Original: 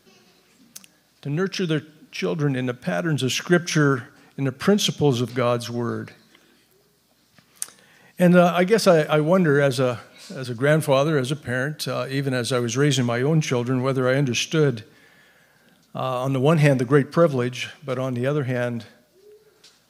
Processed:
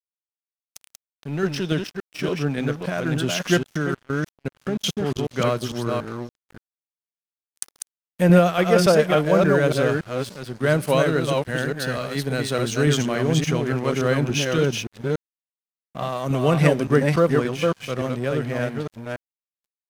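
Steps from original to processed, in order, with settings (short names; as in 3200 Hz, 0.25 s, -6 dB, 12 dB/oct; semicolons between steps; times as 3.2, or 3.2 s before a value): reverse delay 0.286 s, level -3 dB; 3.63–5.31 level quantiser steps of 21 dB; crossover distortion -37 dBFS; gain -1 dB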